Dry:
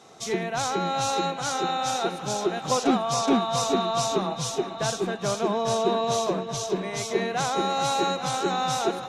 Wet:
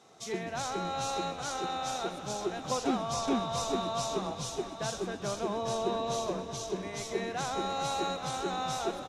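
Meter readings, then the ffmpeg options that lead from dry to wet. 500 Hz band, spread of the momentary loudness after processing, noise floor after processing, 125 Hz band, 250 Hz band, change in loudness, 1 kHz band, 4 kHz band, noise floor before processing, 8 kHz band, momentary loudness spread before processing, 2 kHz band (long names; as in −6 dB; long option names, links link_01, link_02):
−7.5 dB, 5 LU, −43 dBFS, −7.0 dB, −7.5 dB, −7.5 dB, −8.0 dB, −7.5 dB, −36 dBFS, −8.0 dB, 5 LU, −8.0 dB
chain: -filter_complex "[0:a]asplit=7[link_01][link_02][link_03][link_04][link_05][link_06][link_07];[link_02]adelay=127,afreqshift=-95,volume=-14dB[link_08];[link_03]adelay=254,afreqshift=-190,volume=-18.4dB[link_09];[link_04]adelay=381,afreqshift=-285,volume=-22.9dB[link_10];[link_05]adelay=508,afreqshift=-380,volume=-27.3dB[link_11];[link_06]adelay=635,afreqshift=-475,volume=-31.7dB[link_12];[link_07]adelay=762,afreqshift=-570,volume=-36.2dB[link_13];[link_01][link_08][link_09][link_10][link_11][link_12][link_13]amix=inputs=7:normalize=0,volume=-8dB"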